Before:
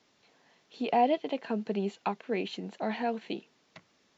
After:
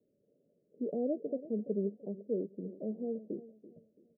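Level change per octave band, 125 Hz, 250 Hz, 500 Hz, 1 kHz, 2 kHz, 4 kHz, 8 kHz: −2.5 dB, −3.0 dB, −3.5 dB, −27.5 dB, below −40 dB, below −40 dB, can't be measured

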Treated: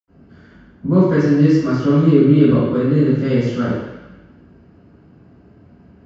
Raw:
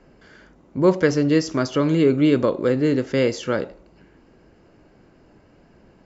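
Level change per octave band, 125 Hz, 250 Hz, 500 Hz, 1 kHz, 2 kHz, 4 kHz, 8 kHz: +10.0 dB, +6.5 dB, +1.0 dB, +1.5 dB, −1.0 dB, −3.5 dB, can't be measured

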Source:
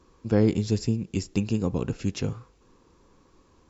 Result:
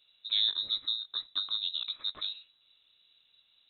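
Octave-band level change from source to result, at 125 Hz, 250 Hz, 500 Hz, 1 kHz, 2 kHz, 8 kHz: below −40 dB, below −40 dB, below −35 dB, −11.0 dB, −9.5 dB, can't be measured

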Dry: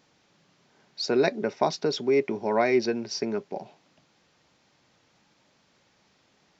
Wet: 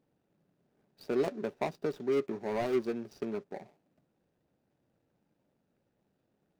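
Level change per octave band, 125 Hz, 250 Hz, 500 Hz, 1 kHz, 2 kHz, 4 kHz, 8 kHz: −6.5 dB, −7.0 dB, −7.5 dB, −10.5 dB, −12.0 dB, −17.0 dB, can't be measured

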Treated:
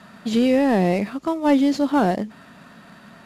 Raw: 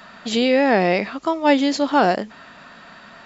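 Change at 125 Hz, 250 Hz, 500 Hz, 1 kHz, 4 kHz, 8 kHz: +4.0 dB, +2.0 dB, −3.0 dB, −4.5 dB, −7.5 dB, can't be measured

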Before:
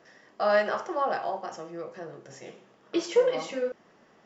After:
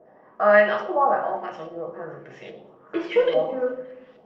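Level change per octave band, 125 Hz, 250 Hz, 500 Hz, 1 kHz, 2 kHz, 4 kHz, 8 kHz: +5.5 dB, +3.0 dB, +5.5 dB, +7.0 dB, +9.0 dB, +0.5 dB, can't be measured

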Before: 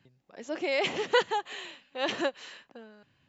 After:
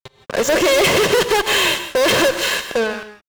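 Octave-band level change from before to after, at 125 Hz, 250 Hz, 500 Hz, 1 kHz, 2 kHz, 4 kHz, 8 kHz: +22.0 dB, +15.0 dB, +15.0 dB, +12.0 dB, +15.5 dB, +17.0 dB, can't be measured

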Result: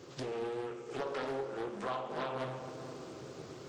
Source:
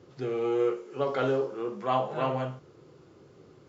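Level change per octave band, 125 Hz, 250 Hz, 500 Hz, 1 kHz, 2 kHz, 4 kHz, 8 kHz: −9.5 dB, −9.0 dB, −9.5 dB, −8.0 dB, −3.5 dB, −3.5 dB, can't be measured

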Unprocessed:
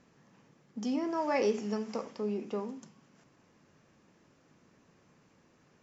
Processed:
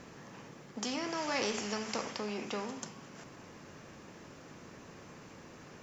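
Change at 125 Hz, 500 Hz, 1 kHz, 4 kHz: −1.0, −5.5, −1.5, +9.5 decibels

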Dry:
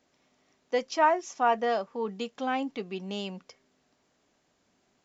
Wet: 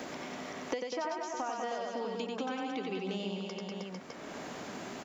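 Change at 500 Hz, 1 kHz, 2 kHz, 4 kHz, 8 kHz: −6.0 dB, −9.5 dB, −6.5 dB, −2.0 dB, can't be measured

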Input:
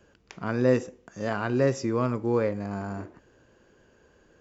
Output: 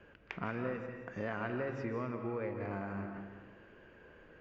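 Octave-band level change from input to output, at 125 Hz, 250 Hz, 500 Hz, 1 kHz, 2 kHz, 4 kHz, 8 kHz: −12.0 dB, −11.5 dB, −13.0 dB, −8.5 dB, −6.5 dB, below −10 dB, can't be measured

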